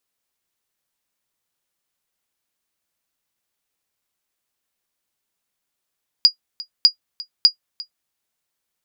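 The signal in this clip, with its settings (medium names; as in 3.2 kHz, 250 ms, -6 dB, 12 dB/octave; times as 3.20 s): sonar ping 4.87 kHz, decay 0.10 s, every 0.60 s, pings 3, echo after 0.35 s, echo -20 dB -2 dBFS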